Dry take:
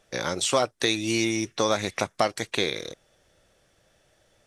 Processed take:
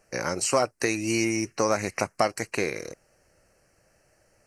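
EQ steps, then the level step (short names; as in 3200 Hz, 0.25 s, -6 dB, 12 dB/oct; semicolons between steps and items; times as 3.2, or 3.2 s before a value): Butterworth band-stop 3500 Hz, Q 2.2; high shelf 10000 Hz +3.5 dB; 0.0 dB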